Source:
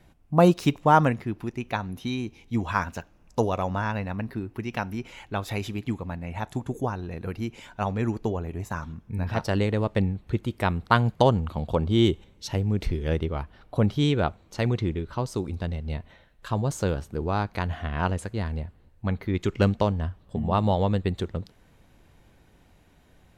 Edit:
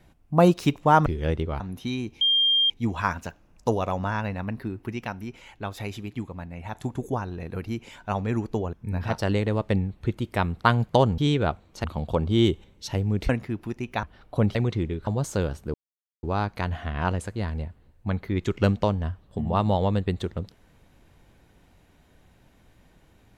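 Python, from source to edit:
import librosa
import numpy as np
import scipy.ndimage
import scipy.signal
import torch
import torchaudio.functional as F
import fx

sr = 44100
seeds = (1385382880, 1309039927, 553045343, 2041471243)

y = fx.edit(x, sr, fx.swap(start_s=1.06, length_s=0.74, other_s=12.89, other_length_s=0.54),
    fx.insert_tone(at_s=2.41, length_s=0.49, hz=3200.0, db=-17.5),
    fx.clip_gain(start_s=4.72, length_s=1.74, db=-3.5),
    fx.cut(start_s=8.44, length_s=0.55),
    fx.move(start_s=13.95, length_s=0.66, to_s=11.44),
    fx.cut(start_s=15.13, length_s=1.41),
    fx.insert_silence(at_s=17.21, length_s=0.49), tone=tone)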